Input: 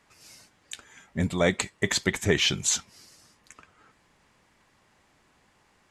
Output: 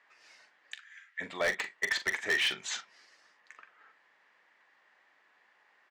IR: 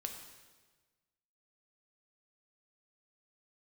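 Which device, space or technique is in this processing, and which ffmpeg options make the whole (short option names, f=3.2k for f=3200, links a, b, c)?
megaphone: -filter_complex "[0:a]asplit=3[a][b][c];[a]afade=t=out:st=0.74:d=0.02[d];[b]highpass=f=1.5k:w=0.5412,highpass=f=1.5k:w=1.3066,afade=t=in:st=0.74:d=0.02,afade=t=out:st=1.2:d=0.02[e];[c]afade=t=in:st=1.2:d=0.02[f];[d][e][f]amix=inputs=3:normalize=0,highpass=570,lowpass=3.6k,equalizer=f=1.8k:t=o:w=0.38:g=9,asoftclip=type=hard:threshold=-20dB,asplit=2[g][h];[h]adelay=42,volume=-11dB[i];[g][i]amix=inputs=2:normalize=0,volume=-3.5dB"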